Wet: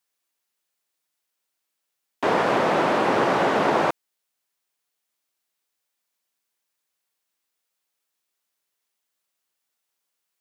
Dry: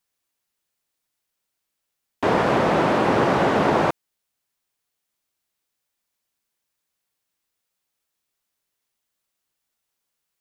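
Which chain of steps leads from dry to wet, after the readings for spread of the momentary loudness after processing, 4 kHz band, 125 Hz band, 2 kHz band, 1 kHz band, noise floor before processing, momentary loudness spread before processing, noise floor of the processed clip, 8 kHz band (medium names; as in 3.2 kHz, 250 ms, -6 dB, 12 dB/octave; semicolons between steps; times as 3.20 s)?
6 LU, 0.0 dB, -7.5 dB, 0.0 dB, -0.5 dB, -80 dBFS, 6 LU, -80 dBFS, 0.0 dB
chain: high-pass 320 Hz 6 dB/octave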